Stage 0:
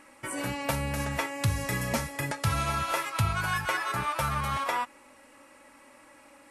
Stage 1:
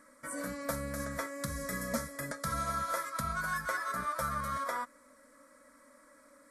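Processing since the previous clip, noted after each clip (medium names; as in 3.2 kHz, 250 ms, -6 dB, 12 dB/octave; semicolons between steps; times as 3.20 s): static phaser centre 550 Hz, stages 8; trim -3 dB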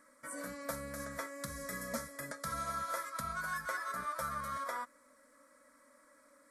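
bass shelf 240 Hz -6 dB; trim -3.5 dB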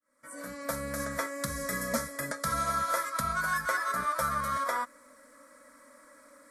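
fade-in on the opening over 0.94 s; trim +8.5 dB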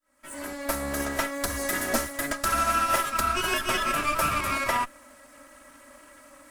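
comb filter that takes the minimum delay 3.1 ms; trim +6.5 dB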